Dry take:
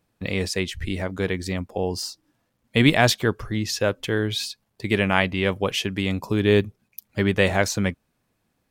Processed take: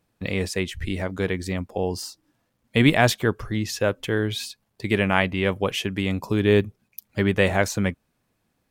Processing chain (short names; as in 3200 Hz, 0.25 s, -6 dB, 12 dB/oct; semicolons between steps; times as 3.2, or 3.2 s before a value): dynamic EQ 4700 Hz, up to -5 dB, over -40 dBFS, Q 1.3